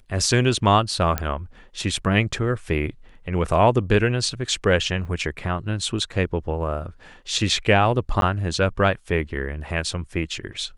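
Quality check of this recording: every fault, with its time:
0:01.18: click −7 dBFS
0:05.05: drop-out 3.3 ms
0:08.21–0:08.22: drop-out 12 ms

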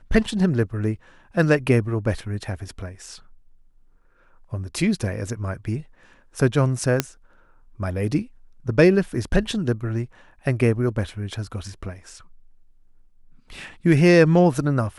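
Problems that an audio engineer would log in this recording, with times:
0:07.00: click −3 dBFS

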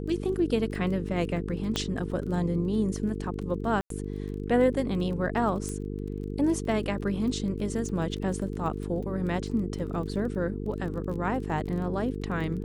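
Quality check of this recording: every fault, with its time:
mains buzz 50 Hz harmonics 9 −34 dBFS
surface crackle 21 per second −37 dBFS
0:01.76: click −13 dBFS
0:03.81–0:03.90: drop-out 93 ms
0:05.69: click −23 dBFS

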